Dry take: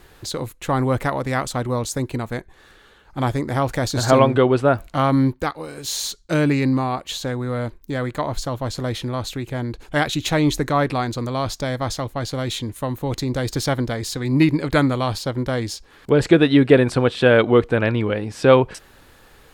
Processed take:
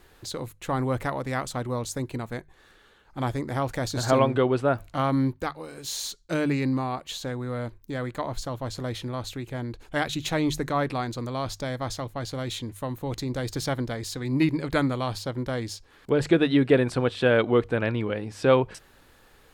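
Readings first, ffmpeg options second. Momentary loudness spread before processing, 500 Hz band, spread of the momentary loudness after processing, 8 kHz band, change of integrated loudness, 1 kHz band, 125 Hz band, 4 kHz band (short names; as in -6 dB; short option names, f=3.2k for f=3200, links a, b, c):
12 LU, -6.5 dB, 12 LU, -6.5 dB, -6.5 dB, -6.5 dB, -7.0 dB, -6.5 dB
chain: -af "bandreject=f=50:t=h:w=6,bandreject=f=100:t=h:w=6,bandreject=f=150:t=h:w=6,volume=-6.5dB"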